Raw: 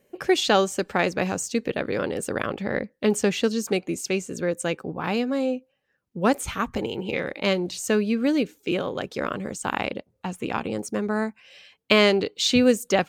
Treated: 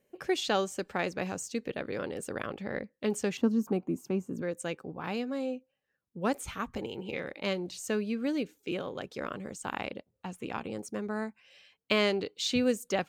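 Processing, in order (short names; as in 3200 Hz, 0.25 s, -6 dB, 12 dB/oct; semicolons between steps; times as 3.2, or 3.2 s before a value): 3.37–4.42 graphic EQ 125/250/500/1000/2000/4000/8000 Hz +4/+9/-4/+10/-10/-12/-10 dB; gain -9 dB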